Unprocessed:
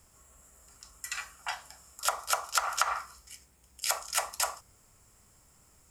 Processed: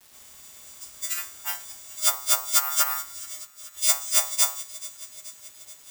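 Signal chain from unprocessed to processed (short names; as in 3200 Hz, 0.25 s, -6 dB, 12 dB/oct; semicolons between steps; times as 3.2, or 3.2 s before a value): frequency quantiser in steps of 2 st; requantised 8-bit, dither none; on a send: thin delay 0.429 s, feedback 66%, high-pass 2200 Hz, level -17 dB; on the sum: careless resampling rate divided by 3×, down none, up zero stuff; gain -3.5 dB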